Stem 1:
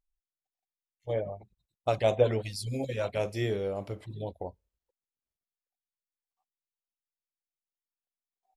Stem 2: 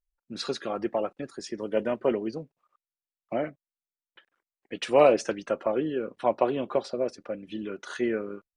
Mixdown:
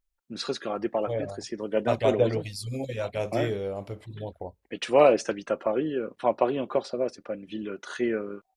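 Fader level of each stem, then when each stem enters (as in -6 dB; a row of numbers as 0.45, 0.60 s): +0.5, +0.5 dB; 0.00, 0.00 s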